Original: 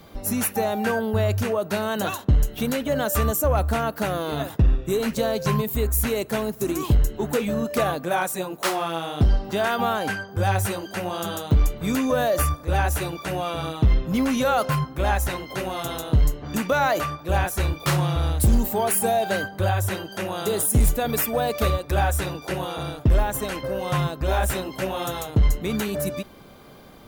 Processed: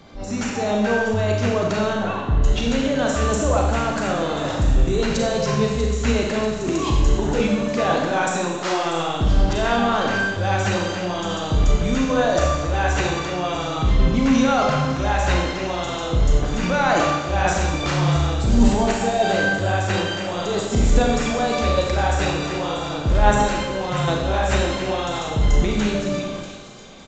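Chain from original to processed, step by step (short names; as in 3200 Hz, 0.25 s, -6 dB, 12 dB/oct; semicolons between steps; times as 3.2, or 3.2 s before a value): transient shaper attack -5 dB, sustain +10 dB; thin delay 0.641 s, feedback 63%, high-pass 3600 Hz, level -10 dB; downsampling 16000 Hz; 1.93–2.44 air absorption 460 m; Schroeder reverb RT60 1.2 s, combs from 30 ms, DRR -0.5 dB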